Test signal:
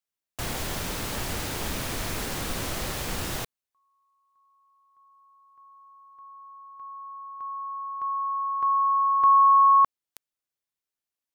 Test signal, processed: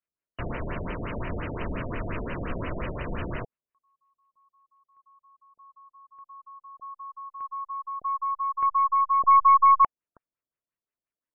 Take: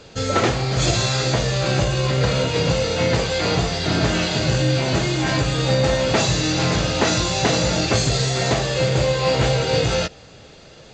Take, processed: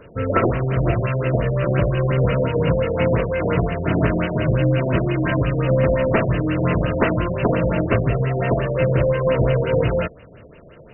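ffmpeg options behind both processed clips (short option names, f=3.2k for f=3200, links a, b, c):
-af "aeval=exprs='0.668*(cos(1*acos(clip(val(0)/0.668,-1,1)))-cos(1*PI/2))+0.119*(cos(2*acos(clip(val(0)/0.668,-1,1)))-cos(2*PI/2))':c=same,asuperstop=centerf=800:order=4:qfactor=5.7,afftfilt=real='re*lt(b*sr/1024,800*pow(3100/800,0.5+0.5*sin(2*PI*5.7*pts/sr)))':imag='im*lt(b*sr/1024,800*pow(3100/800,0.5+0.5*sin(2*PI*5.7*pts/sr)))':win_size=1024:overlap=0.75,volume=1.5dB"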